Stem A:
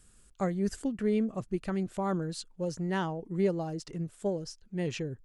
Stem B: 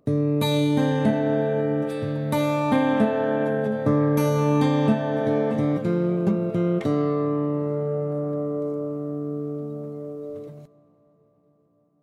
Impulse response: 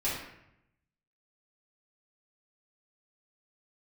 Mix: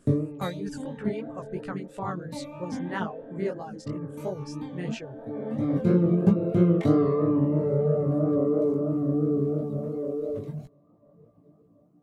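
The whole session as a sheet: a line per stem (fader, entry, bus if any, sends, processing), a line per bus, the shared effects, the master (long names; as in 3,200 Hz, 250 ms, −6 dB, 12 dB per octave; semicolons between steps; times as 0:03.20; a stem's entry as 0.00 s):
−0.5 dB, 0.00 s, no send, parametric band 1,300 Hz +7 dB 1.8 octaves
+0.5 dB, 0.00 s, no send, speech leveller within 5 dB 2 s; low-shelf EQ 490 Hz +8.5 dB; automatic ducking −15 dB, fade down 0.65 s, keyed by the first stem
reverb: not used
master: reverb reduction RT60 1 s; chorus effect 3 Hz, delay 16 ms, depth 7.3 ms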